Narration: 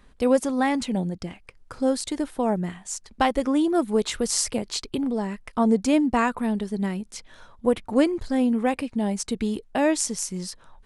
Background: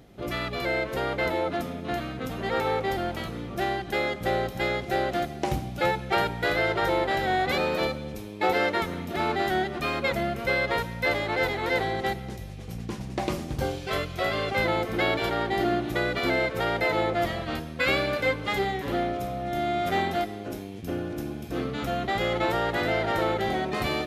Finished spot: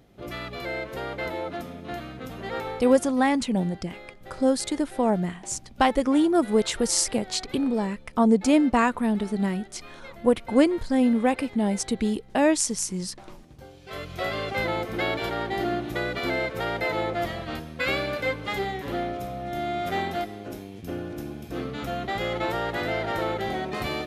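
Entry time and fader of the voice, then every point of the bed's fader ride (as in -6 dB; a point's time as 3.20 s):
2.60 s, +1.0 dB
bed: 2.57 s -4.5 dB
3.24 s -18 dB
13.69 s -18 dB
14.13 s -2 dB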